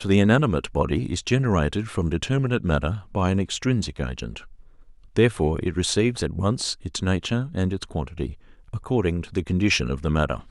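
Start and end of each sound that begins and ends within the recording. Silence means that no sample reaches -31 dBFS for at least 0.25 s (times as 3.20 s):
5.17–8.32 s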